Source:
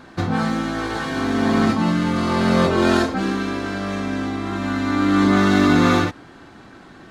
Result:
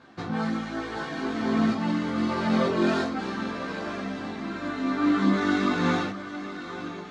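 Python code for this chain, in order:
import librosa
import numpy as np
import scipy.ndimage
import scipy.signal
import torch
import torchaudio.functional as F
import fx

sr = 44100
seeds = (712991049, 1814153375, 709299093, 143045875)

y = fx.bandpass_edges(x, sr, low_hz=100.0, high_hz=6500.0)
y = fx.echo_diffused(y, sr, ms=922, feedback_pct=43, wet_db=-10.5)
y = fx.chorus_voices(y, sr, voices=6, hz=0.82, base_ms=16, depth_ms=2.6, mix_pct=50)
y = y * 10.0 ** (-5.0 / 20.0)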